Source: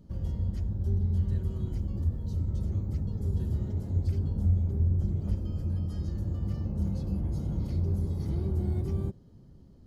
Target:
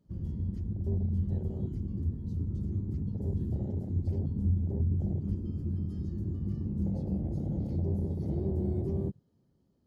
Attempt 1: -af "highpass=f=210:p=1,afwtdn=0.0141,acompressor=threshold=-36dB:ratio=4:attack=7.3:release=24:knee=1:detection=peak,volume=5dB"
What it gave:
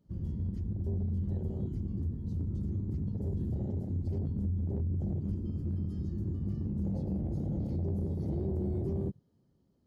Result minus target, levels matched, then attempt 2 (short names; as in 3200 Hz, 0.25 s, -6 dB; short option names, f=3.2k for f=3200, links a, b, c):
compressor: peak gain reduction +7 dB
-af "highpass=f=210:p=1,afwtdn=0.0141,volume=5dB"